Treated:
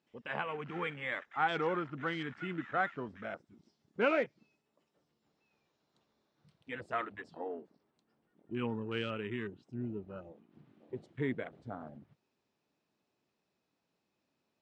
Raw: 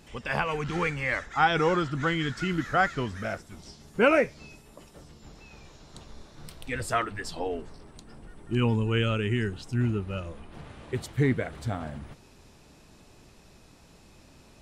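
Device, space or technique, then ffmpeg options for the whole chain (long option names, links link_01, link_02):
over-cleaned archive recording: -af "highpass=190,lowpass=5100,afwtdn=0.0126,volume=-8.5dB"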